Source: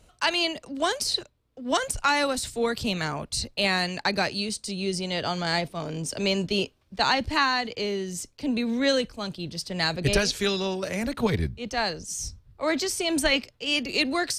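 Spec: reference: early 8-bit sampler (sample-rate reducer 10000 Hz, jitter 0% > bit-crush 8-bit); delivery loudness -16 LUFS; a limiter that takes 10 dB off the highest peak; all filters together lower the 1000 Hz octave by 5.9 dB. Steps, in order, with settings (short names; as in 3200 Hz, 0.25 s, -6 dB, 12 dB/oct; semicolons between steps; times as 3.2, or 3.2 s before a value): bell 1000 Hz -8 dB; limiter -21 dBFS; sample-rate reducer 10000 Hz, jitter 0%; bit-crush 8-bit; gain +15 dB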